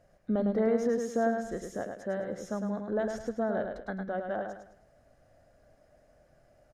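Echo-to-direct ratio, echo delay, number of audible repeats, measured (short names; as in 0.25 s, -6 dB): -5.0 dB, 0.105 s, 4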